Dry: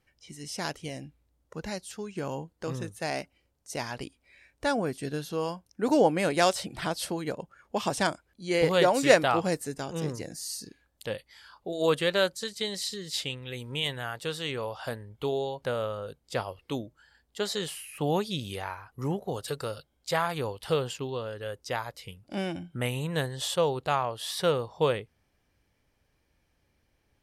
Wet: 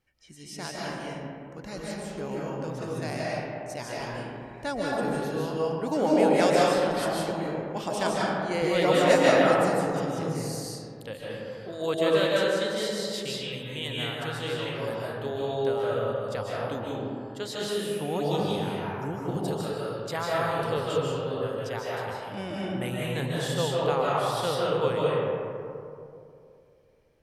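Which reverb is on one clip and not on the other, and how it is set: digital reverb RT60 2.6 s, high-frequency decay 0.35×, pre-delay 0.11 s, DRR -6 dB; gain -5 dB

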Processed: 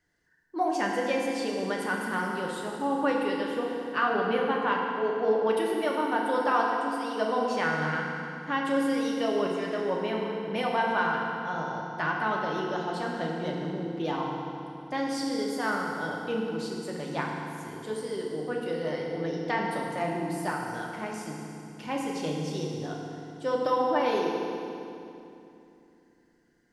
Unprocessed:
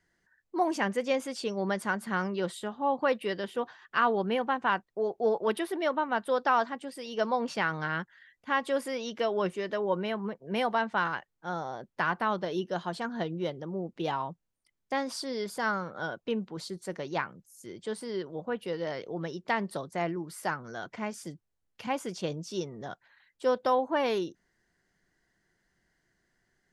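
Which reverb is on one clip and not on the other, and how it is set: FDN reverb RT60 2.8 s, low-frequency decay 1.4×, high-frequency decay 0.85×, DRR -2 dB; gain -2.5 dB

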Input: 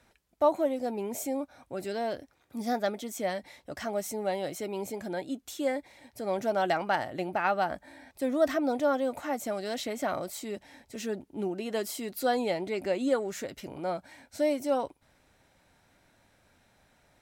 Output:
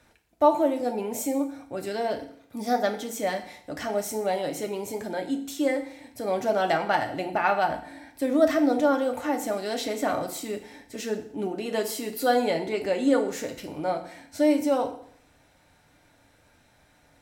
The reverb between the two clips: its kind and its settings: FDN reverb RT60 0.62 s, low-frequency decay 1.05×, high-frequency decay 0.95×, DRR 4.5 dB; gain +3 dB

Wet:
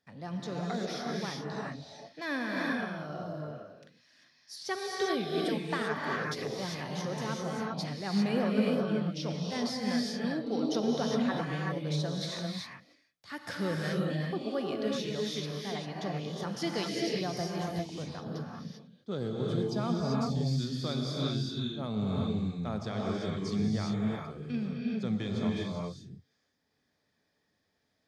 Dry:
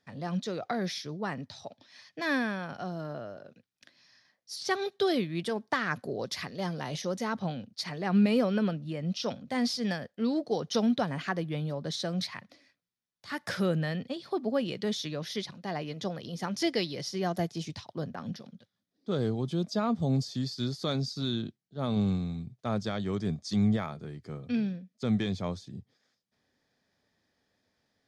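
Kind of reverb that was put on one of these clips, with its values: non-linear reverb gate 0.42 s rising, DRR -2.5 dB; gain -5.5 dB

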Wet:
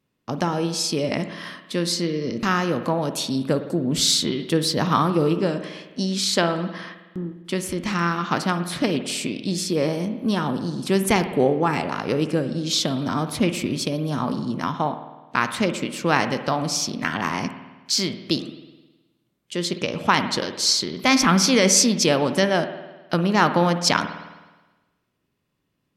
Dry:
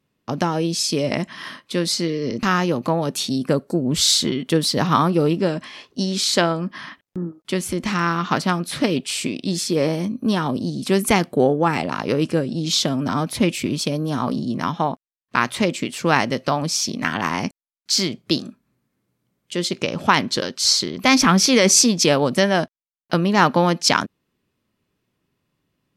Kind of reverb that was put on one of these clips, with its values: spring tank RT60 1.2 s, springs 52 ms, chirp 70 ms, DRR 9.5 dB; gain -2.5 dB

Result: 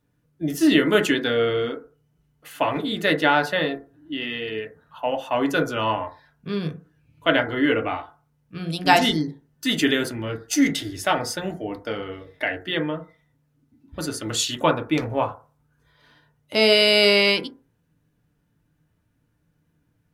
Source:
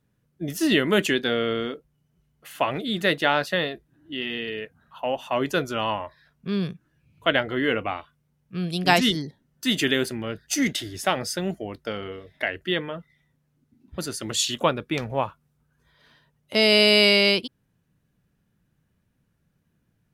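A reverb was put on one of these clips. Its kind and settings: FDN reverb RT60 0.36 s, low-frequency decay 0.85×, high-frequency decay 0.25×, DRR 2.5 dB

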